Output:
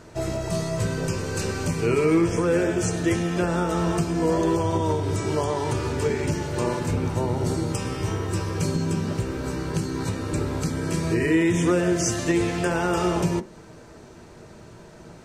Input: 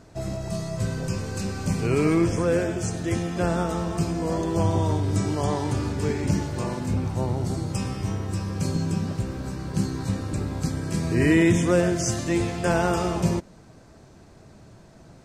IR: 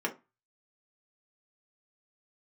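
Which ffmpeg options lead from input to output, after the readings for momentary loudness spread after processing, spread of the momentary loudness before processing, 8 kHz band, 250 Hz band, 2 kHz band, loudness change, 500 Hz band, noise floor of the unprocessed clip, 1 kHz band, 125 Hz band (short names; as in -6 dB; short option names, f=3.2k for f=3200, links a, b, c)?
7 LU, 8 LU, +2.0 dB, +0.5 dB, +1.5 dB, +1.0 dB, +2.5 dB, -50 dBFS, +2.0 dB, -1.0 dB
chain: -filter_complex "[0:a]alimiter=limit=-18dB:level=0:latency=1:release=299,asplit=2[a][b];[1:a]atrim=start_sample=2205[c];[b][c]afir=irnorm=-1:irlink=0,volume=-9.5dB[d];[a][d]amix=inputs=2:normalize=0,volume=3.5dB"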